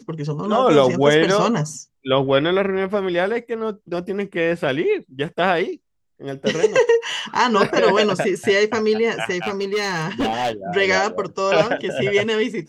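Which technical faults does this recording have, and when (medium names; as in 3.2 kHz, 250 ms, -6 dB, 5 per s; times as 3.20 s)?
9.43–10.52 s: clipped -17 dBFS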